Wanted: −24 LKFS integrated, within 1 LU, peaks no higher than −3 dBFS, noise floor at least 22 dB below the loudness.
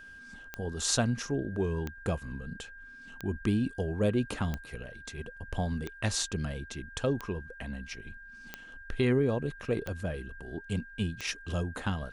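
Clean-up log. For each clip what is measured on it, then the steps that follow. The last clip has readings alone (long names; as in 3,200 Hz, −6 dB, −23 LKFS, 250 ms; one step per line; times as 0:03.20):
number of clicks 9; interfering tone 1,600 Hz; level of the tone −47 dBFS; integrated loudness −33.0 LKFS; sample peak −11.0 dBFS; target loudness −24.0 LKFS
→ click removal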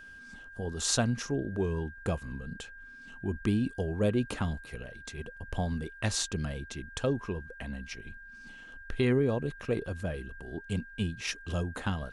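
number of clicks 0; interfering tone 1,600 Hz; level of the tone −47 dBFS
→ notch filter 1,600 Hz, Q 30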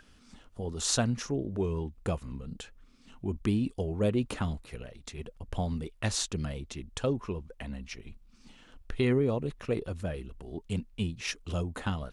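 interfering tone none found; integrated loudness −33.0 LKFS; sample peak −11.0 dBFS; target loudness −24.0 LKFS
→ level +9 dB
brickwall limiter −3 dBFS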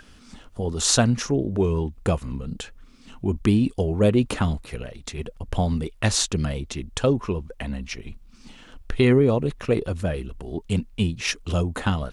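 integrated loudness −24.0 LKFS; sample peak −3.0 dBFS; background noise floor −50 dBFS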